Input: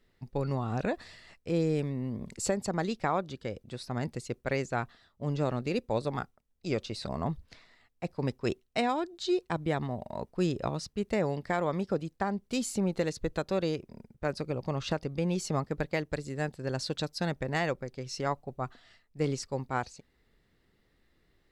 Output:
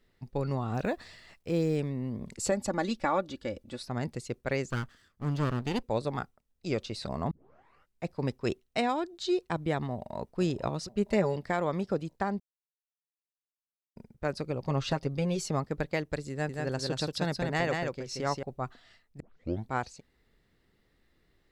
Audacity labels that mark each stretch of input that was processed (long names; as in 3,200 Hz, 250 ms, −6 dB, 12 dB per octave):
0.740000	1.770000	log-companded quantiser 8 bits
2.510000	3.820000	comb filter 3.5 ms
4.700000	5.830000	lower of the sound and its delayed copy delay 0.63 ms
7.310000	7.310000	tape start 0.75 s
9.920000	10.400000	delay throw 480 ms, feedback 40%, level −13.5 dB
10.910000	11.360000	comb filter 5 ms, depth 59%
12.400000	13.960000	silence
14.670000	15.440000	comb filter 7.4 ms
16.310000	18.430000	single-tap delay 180 ms −3.5 dB
19.200000	19.200000	tape start 0.49 s